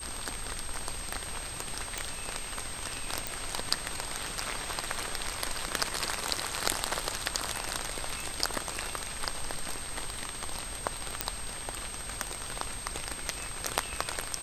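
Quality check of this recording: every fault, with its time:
surface crackle 27 per second −41 dBFS
whistle 8,400 Hz −40 dBFS
0:01.98: click
0:03.27: click
0:11.21: click −8 dBFS

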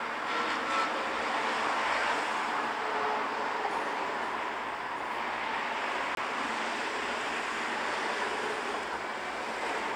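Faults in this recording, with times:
0:06.15–0:06.17: drop-out 22 ms

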